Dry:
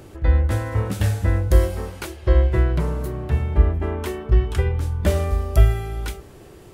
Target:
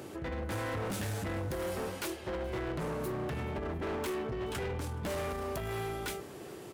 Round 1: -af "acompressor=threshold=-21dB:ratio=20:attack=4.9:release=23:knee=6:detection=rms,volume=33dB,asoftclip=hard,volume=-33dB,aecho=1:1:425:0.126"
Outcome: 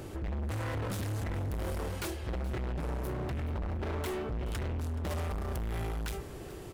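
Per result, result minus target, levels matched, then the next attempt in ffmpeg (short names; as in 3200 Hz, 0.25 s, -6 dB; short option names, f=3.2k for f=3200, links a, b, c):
echo-to-direct +6 dB; 125 Hz band +4.0 dB
-af "acompressor=threshold=-21dB:ratio=20:attack=4.9:release=23:knee=6:detection=rms,volume=33dB,asoftclip=hard,volume=-33dB,aecho=1:1:425:0.0631"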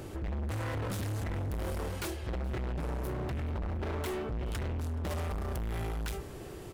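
125 Hz band +4.0 dB
-af "acompressor=threshold=-21dB:ratio=20:attack=4.9:release=23:knee=6:detection=rms,highpass=170,volume=33dB,asoftclip=hard,volume=-33dB,aecho=1:1:425:0.0631"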